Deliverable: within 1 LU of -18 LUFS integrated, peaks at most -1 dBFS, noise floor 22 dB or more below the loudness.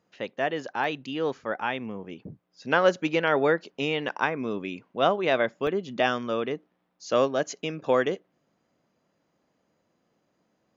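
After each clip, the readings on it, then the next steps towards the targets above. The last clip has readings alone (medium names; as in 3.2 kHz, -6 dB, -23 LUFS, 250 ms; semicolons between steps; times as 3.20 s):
dropouts 2; longest dropout 1.1 ms; loudness -27.0 LUFS; peak level -7.0 dBFS; loudness target -18.0 LUFS
-> interpolate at 0.84/5.67 s, 1.1 ms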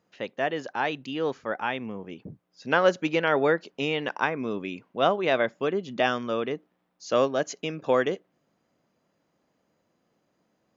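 dropouts 0; loudness -27.0 LUFS; peak level -7.0 dBFS; loudness target -18.0 LUFS
-> trim +9 dB; peak limiter -1 dBFS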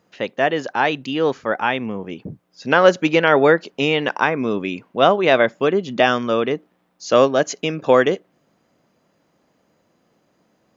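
loudness -18.5 LUFS; peak level -1.0 dBFS; noise floor -65 dBFS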